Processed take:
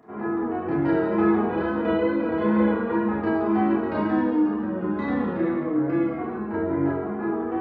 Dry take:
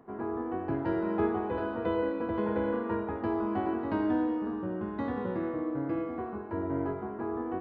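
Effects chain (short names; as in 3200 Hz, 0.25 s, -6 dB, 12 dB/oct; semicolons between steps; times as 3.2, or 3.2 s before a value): wow and flutter 36 cents; reverb RT60 0.65 s, pre-delay 28 ms, DRR -3 dB; gain +4 dB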